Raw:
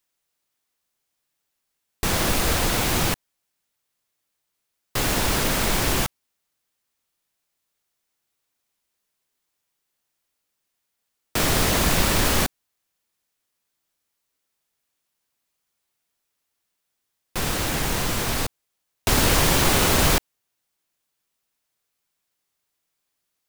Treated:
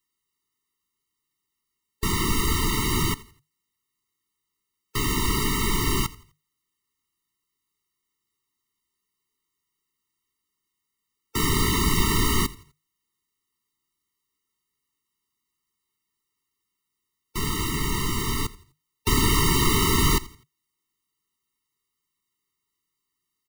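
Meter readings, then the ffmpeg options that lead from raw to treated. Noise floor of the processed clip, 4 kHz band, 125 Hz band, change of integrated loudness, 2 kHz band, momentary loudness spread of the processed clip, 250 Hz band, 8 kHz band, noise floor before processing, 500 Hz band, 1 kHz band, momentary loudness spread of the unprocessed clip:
-82 dBFS, -2.5 dB, 0.0 dB, -2.5 dB, -4.5 dB, 11 LU, 0.0 dB, -3.5 dB, -79 dBFS, -5.0 dB, -2.5 dB, 11 LU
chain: -filter_complex "[0:a]asplit=4[a][b][c][d];[b]adelay=84,afreqshift=-51,volume=-20dB[e];[c]adelay=168,afreqshift=-102,volume=-29.1dB[f];[d]adelay=252,afreqshift=-153,volume=-38.2dB[g];[a][e][f][g]amix=inputs=4:normalize=0,afftfilt=real='re*eq(mod(floor(b*sr/1024/450),2),0)':imag='im*eq(mod(floor(b*sr/1024/450),2),0)':win_size=1024:overlap=0.75"

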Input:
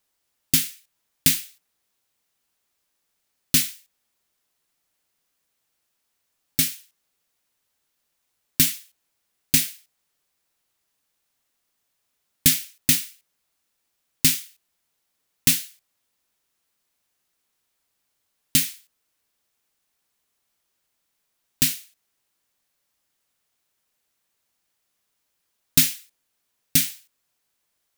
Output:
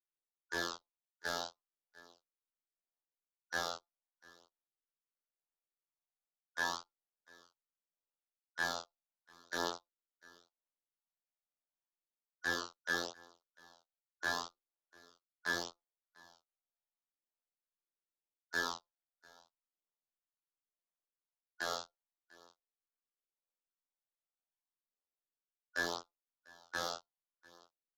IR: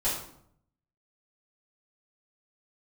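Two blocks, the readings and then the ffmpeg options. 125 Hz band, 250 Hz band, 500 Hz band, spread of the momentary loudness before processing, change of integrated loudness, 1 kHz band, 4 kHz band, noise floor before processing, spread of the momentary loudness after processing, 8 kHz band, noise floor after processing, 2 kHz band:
-25.5 dB, -18.5 dB, +4.5 dB, 11 LU, -18.5 dB, n/a, -16.0 dB, -76 dBFS, 11 LU, -25.0 dB, under -85 dBFS, -3.5 dB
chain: -filter_complex "[0:a]afftfilt=real='real(if(lt(b,272),68*(eq(floor(b/68),0)*3+eq(floor(b/68),1)*0+eq(floor(b/68),2)*1+eq(floor(b/68),3)*2)+mod(b,68),b),0)':imag='imag(if(lt(b,272),68*(eq(floor(b/68),0)*3+eq(floor(b/68),1)*0+eq(floor(b/68),2)*1+eq(floor(b/68),3)*2)+mod(b,68),b),0)':win_size=2048:overlap=0.75,acrossover=split=130|380|2300[a][b][c][d];[b]acompressor=threshold=-38dB:ratio=4[e];[c]acompressor=threshold=-32dB:ratio=4[f];[d]acompressor=threshold=-27dB:ratio=4[g];[a][e][f][g]amix=inputs=4:normalize=0,afftfilt=real='hypot(re,im)*cos(PI*b)':imag='0':win_size=2048:overlap=0.75,acrossover=split=320 5400:gain=0.0794 1 0.112[h][i][j];[h][i][j]amix=inputs=3:normalize=0,aresample=16000,aresample=44100,anlmdn=0.000158,areverse,acompressor=threshold=-47dB:ratio=6,areverse,asoftclip=type=hard:threshold=-38.5dB,aecho=1:1:697:0.0631,flanger=delay=22.5:depth=2.2:speed=0.39,volume=16.5dB"

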